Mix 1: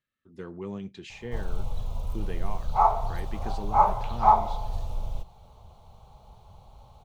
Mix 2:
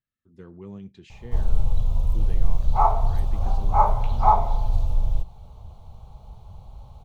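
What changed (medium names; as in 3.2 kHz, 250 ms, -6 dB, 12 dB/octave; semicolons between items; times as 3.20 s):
speech -8.0 dB; master: add bass shelf 210 Hz +10.5 dB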